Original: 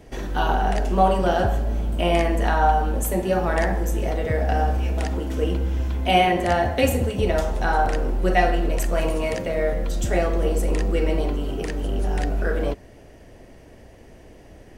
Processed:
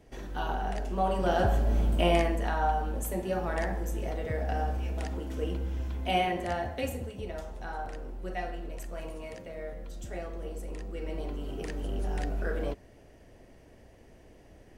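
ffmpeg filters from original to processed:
-af "volume=2.37,afade=t=in:st=1.03:d=0.8:silence=0.316228,afade=t=out:st=1.83:d=0.59:silence=0.375837,afade=t=out:st=6.1:d=1.17:silence=0.421697,afade=t=in:st=10.93:d=0.77:silence=0.375837"

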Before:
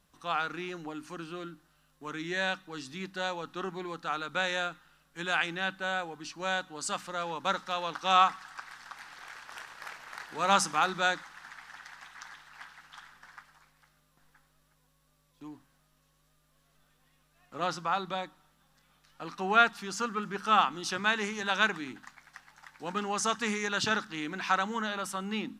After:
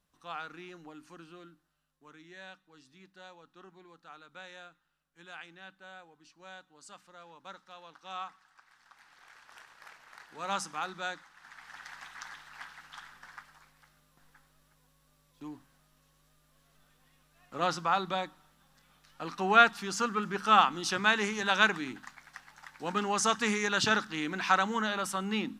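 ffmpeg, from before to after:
-af "volume=3.35,afade=t=out:st=1.09:d=1.18:silence=0.375837,afade=t=in:st=8.62:d=0.86:silence=0.375837,afade=t=in:st=11.36:d=0.56:silence=0.281838"

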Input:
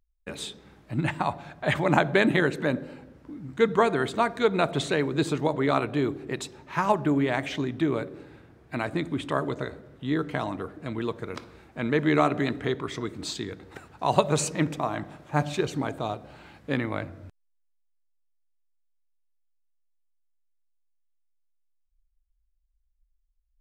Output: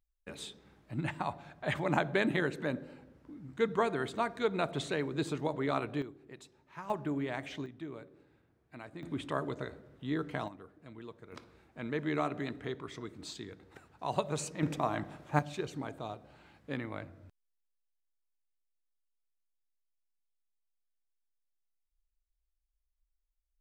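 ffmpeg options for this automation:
-af "asetnsamples=n=441:p=0,asendcmd='6.02 volume volume -19dB;6.9 volume volume -11dB;7.66 volume volume -18dB;9.03 volume volume -7.5dB;10.48 volume volume -17.5dB;11.32 volume volume -11dB;14.63 volume volume -3.5dB;15.39 volume volume -10.5dB',volume=0.376"

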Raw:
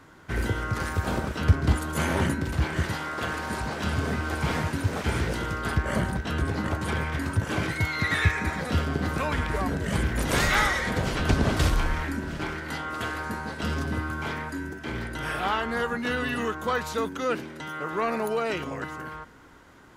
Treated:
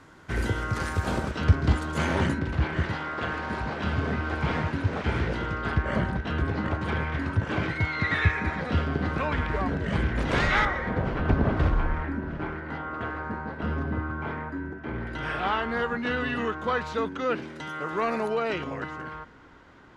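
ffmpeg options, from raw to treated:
-af "asetnsamples=n=441:p=0,asendcmd='1.31 lowpass f 5700;2.39 lowpass f 3300;10.65 lowpass f 1600;15.07 lowpass f 3700;17.42 lowpass f 7300;18.27 lowpass f 4300',lowpass=10000"

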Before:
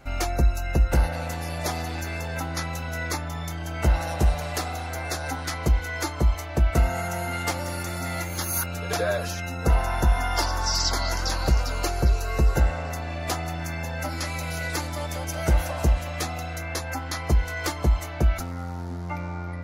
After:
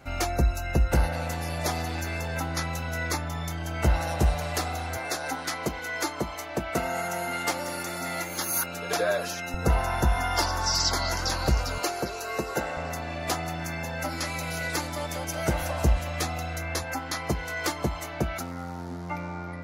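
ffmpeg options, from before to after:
-af "asetnsamples=n=441:p=0,asendcmd='4.97 highpass f 210;9.54 highpass f 62;11.78 highpass f 260;12.77 highpass f 110;15.62 highpass f 49;16.83 highpass f 130',highpass=56"

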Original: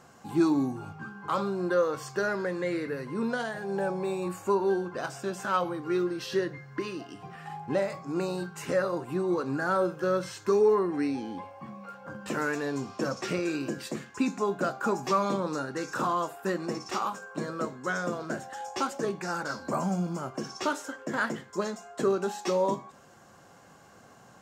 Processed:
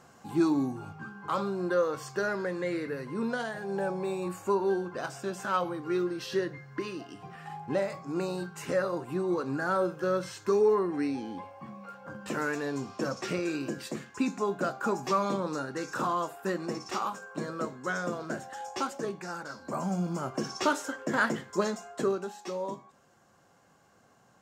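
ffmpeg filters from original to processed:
-af "volume=2.82,afade=t=out:st=18.7:d=0.85:silence=0.473151,afade=t=in:st=19.55:d=0.84:silence=0.298538,afade=t=out:st=21.74:d=0.56:silence=0.281838"

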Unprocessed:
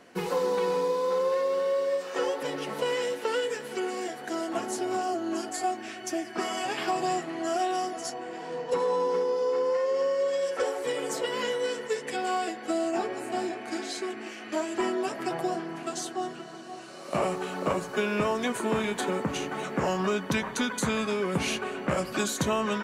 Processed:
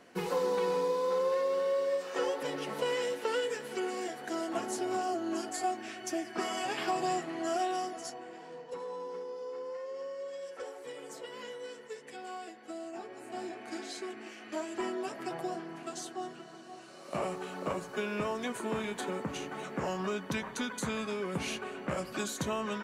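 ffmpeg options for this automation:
-af "volume=1.5,afade=t=out:st=7.53:d=1.19:silence=0.298538,afade=t=in:st=13.07:d=0.58:silence=0.446684"

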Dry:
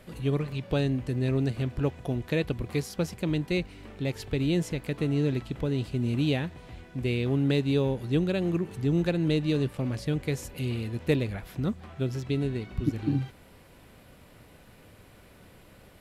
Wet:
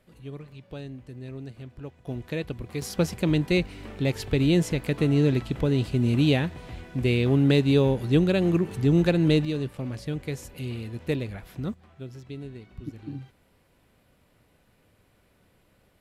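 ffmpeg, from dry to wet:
-af "asetnsamples=n=441:p=0,asendcmd='2.07 volume volume -3.5dB;2.82 volume volume 5dB;9.45 volume volume -2.5dB;11.74 volume volume -10dB',volume=0.251"

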